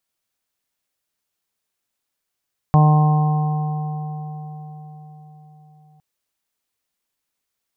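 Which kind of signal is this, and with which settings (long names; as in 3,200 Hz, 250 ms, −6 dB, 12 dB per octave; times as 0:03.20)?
harmonic partials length 3.26 s, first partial 152 Hz, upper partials −17/−19/−16.5/−9/−18/−13 dB, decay 4.75 s, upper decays 2.44/4.36/1.60/4.99/3.22/3.27 s, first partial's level −9 dB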